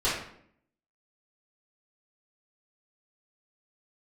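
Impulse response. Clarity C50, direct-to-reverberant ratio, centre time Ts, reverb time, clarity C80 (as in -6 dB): 2.0 dB, -12.5 dB, 49 ms, 0.65 s, 6.5 dB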